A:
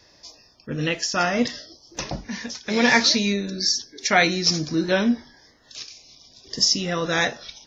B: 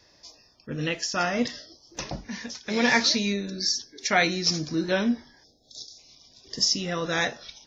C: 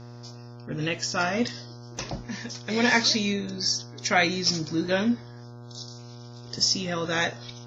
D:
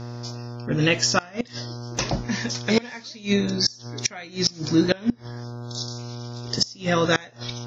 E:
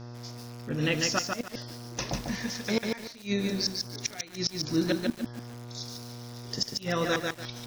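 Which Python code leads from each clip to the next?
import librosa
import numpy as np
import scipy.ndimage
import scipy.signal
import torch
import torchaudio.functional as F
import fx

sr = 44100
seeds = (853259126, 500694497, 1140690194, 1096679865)

y1 = fx.spec_erase(x, sr, start_s=5.44, length_s=0.55, low_hz=830.0, high_hz=3300.0)
y1 = F.gain(torch.from_numpy(y1), -4.0).numpy()
y2 = fx.dmg_buzz(y1, sr, base_hz=120.0, harmonics=13, level_db=-43.0, tilt_db=-7, odd_only=False)
y3 = fx.gate_flip(y2, sr, shuts_db=-16.0, range_db=-25)
y3 = F.gain(torch.from_numpy(y3), 8.5).numpy()
y4 = fx.echo_crushed(y3, sr, ms=146, feedback_pct=35, bits=6, wet_db=-3.0)
y4 = F.gain(torch.from_numpy(y4), -8.0).numpy()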